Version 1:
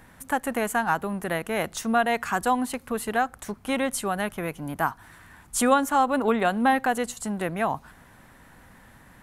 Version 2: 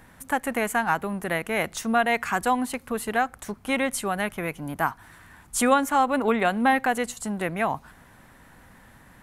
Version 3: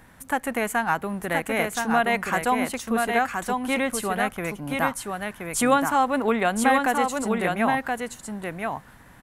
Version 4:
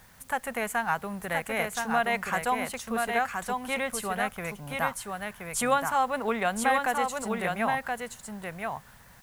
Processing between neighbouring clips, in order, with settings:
dynamic equaliser 2,200 Hz, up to +6 dB, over −44 dBFS, Q 3.1
single-tap delay 1,024 ms −4 dB
parametric band 300 Hz −12.5 dB 0.52 octaves; in parallel at −4 dB: bit-depth reduction 8 bits, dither triangular; on the sum: level −8 dB

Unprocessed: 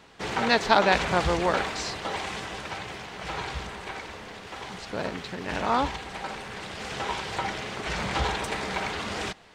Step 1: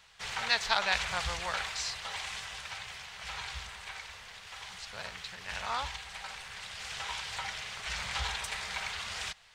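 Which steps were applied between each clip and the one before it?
guitar amp tone stack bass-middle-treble 10-0-10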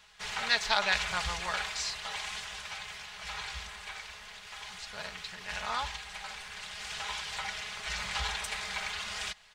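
comb filter 4.8 ms, depth 48%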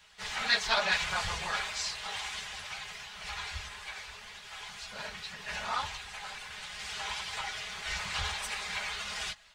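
random phases in long frames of 50 ms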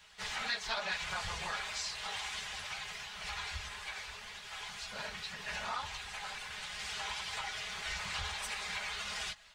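downward compressor 2.5 to 1, threshold −37 dBFS, peak gain reduction 10.5 dB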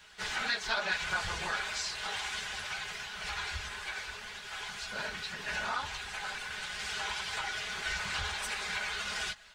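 hollow resonant body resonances 320/1,500 Hz, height 9 dB, ringing for 25 ms
level +2.5 dB

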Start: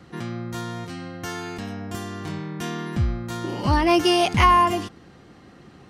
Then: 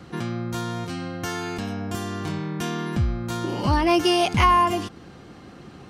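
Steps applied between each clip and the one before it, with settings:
notch filter 1,900 Hz, Q 15
in parallel at +2.5 dB: downward compressor, threshold −31 dBFS, peak gain reduction 17.5 dB
on the sum: level −3 dB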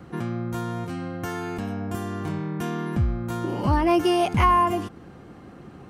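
parametric band 4,600 Hz −10.5 dB 1.8 octaves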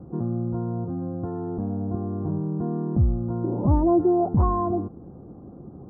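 Gaussian smoothing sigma 11 samples
level +3 dB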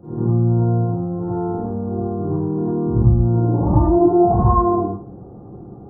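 backwards echo 103 ms −6.5 dB
convolution reverb RT60 0.45 s, pre-delay 43 ms, DRR −8.5 dB
level −4.5 dB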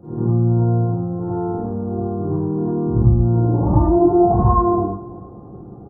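repeating echo 335 ms, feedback 32%, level −20 dB

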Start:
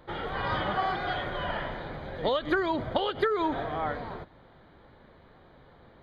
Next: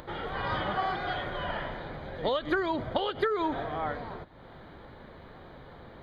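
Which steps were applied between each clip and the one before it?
upward compression, threshold −37 dBFS
level −1.5 dB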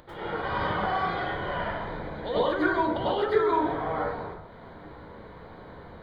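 dense smooth reverb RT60 0.76 s, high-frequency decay 0.4×, pre-delay 85 ms, DRR −9.5 dB
level −7 dB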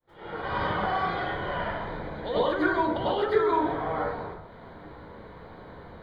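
fade in at the beginning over 0.56 s

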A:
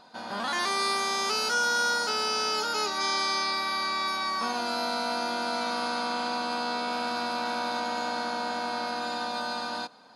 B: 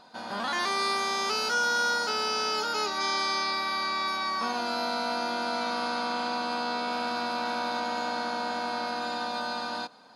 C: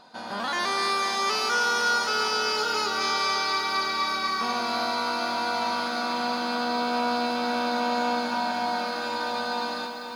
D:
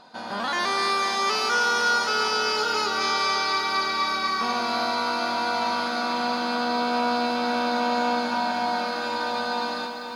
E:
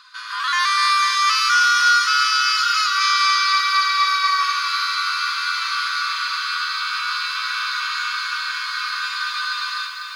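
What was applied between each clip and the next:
dynamic equaliser 9,300 Hz, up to −6 dB, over −48 dBFS, Q 1
feedback echo at a low word length 248 ms, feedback 80%, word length 9 bits, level −8.5 dB; level +1.5 dB
high-shelf EQ 9,300 Hz −6 dB; level +2 dB
linear-phase brick-wall high-pass 1,000 Hz; level +7.5 dB

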